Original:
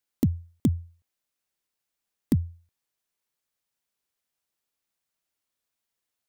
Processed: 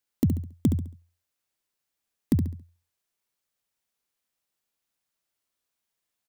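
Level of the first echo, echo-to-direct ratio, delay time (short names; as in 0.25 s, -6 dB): -7.0 dB, -6.5 dB, 69 ms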